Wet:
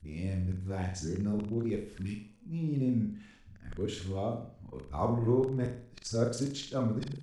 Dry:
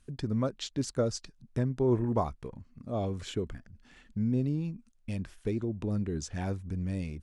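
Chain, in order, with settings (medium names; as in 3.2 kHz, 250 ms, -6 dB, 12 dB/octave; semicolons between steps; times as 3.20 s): reverse the whole clip; spectral replace 1.99–2.43 s, 450–1300 Hz both; flutter echo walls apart 7.4 m, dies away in 0.52 s; trim -2.5 dB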